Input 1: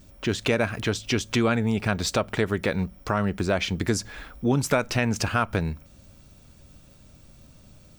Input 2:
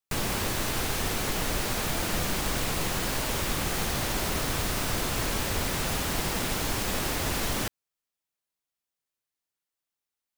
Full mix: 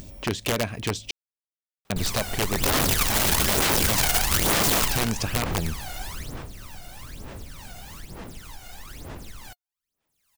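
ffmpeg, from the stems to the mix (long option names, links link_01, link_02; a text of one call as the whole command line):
ffmpeg -i stem1.wav -i stem2.wav -filter_complex "[0:a]equalizer=frequency=1400:width=2.8:gain=-9.5,volume=-1.5dB,asplit=3[link_01][link_02][link_03];[link_01]atrim=end=1.11,asetpts=PTS-STARTPTS,afade=type=out:start_time=1.106:duration=0.004:curve=hsin[link_04];[link_02]atrim=start=1.11:end=1.9,asetpts=PTS-STARTPTS,volume=0[link_05];[link_03]atrim=start=1.9,asetpts=PTS-STARTPTS,afade=type=in:duration=0.004:curve=hsin[link_06];[link_04][link_05][link_06]concat=n=3:v=0:a=1[link_07];[1:a]aphaser=in_gain=1:out_gain=1:delay=1.4:decay=0.8:speed=1.1:type=sinusoidal,adelay=1850,volume=-0.5dB,afade=type=in:start_time=2.51:duration=0.38:silence=0.398107,afade=type=out:start_time=4.82:duration=0.27:silence=0.298538,afade=type=out:start_time=6.06:duration=0.42:silence=0.251189[link_08];[link_07][link_08]amix=inputs=2:normalize=0,acompressor=mode=upward:threshold=-32dB:ratio=2.5,aeval=exprs='(mod(6.68*val(0)+1,2)-1)/6.68':channel_layout=same" out.wav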